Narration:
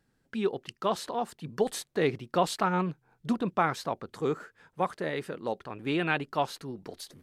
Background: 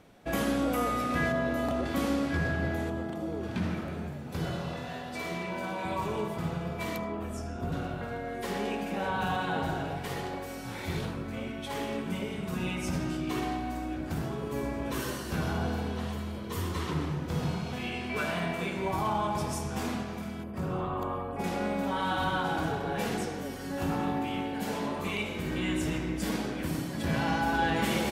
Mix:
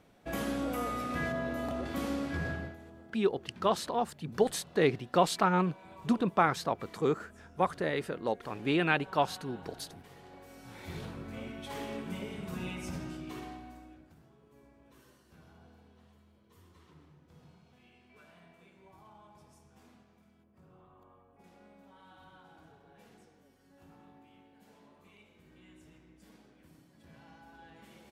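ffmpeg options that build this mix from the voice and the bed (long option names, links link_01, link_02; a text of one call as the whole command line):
ffmpeg -i stem1.wav -i stem2.wav -filter_complex "[0:a]adelay=2800,volume=0.5dB[link_01];[1:a]volume=8dB,afade=type=out:start_time=2.51:duration=0.25:silence=0.211349,afade=type=in:start_time=10.2:duration=1.19:silence=0.211349,afade=type=out:start_time=12.56:duration=1.59:silence=0.0794328[link_02];[link_01][link_02]amix=inputs=2:normalize=0" out.wav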